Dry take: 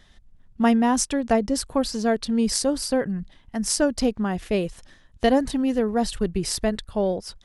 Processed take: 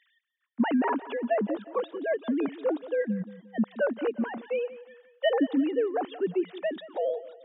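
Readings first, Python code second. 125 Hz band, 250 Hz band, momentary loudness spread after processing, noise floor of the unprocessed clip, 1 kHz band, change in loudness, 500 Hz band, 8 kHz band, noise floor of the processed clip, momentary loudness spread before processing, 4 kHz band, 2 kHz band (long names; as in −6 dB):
−10.0 dB, −6.5 dB, 7 LU, −55 dBFS, −6.0 dB, −5.5 dB, −3.0 dB, below −40 dB, −73 dBFS, 6 LU, −13.0 dB, −3.5 dB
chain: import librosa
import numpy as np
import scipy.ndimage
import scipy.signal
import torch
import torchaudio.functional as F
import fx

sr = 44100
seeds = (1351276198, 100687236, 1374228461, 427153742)

p1 = fx.sine_speech(x, sr)
p2 = scipy.signal.sosfilt(scipy.signal.butter(2, 190.0, 'highpass', fs=sr, output='sos'), p1)
p3 = p2 + fx.echo_feedback(p2, sr, ms=176, feedback_pct=41, wet_db=-16, dry=0)
y = p3 * librosa.db_to_amplitude(-5.0)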